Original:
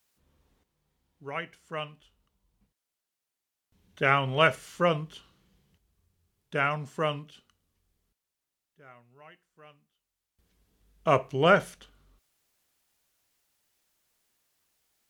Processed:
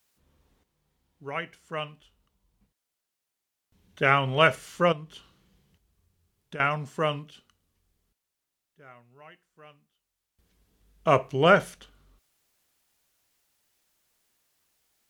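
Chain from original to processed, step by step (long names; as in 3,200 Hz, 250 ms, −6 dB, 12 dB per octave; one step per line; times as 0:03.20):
0:04.92–0:06.60: downward compressor 4 to 1, threshold −40 dBFS, peak gain reduction 13.5 dB
level +2 dB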